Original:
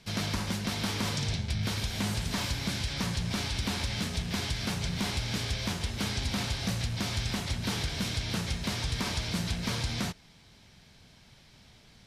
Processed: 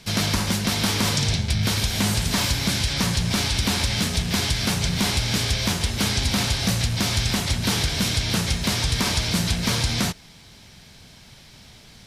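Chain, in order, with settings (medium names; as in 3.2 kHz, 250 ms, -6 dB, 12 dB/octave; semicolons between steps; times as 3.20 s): treble shelf 6 kHz +6.5 dB; trim +8.5 dB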